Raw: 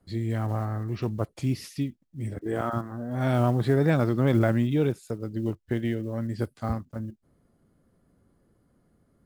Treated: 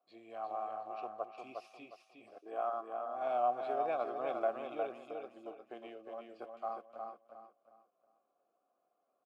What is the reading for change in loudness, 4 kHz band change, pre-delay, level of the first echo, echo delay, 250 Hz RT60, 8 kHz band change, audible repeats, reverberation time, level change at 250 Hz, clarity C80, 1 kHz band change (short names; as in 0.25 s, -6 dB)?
-12.0 dB, -16.0 dB, none, -5.0 dB, 0.359 s, none, n/a, 3, none, -25.0 dB, none, -1.0 dB